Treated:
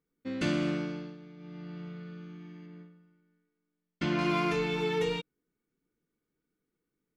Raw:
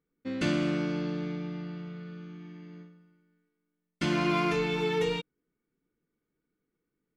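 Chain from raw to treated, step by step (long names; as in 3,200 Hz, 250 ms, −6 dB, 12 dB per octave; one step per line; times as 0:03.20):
0:00.69–0:01.84: duck −14 dB, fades 0.48 s
0:02.66–0:04.19: high-frequency loss of the air 110 metres
level −1.5 dB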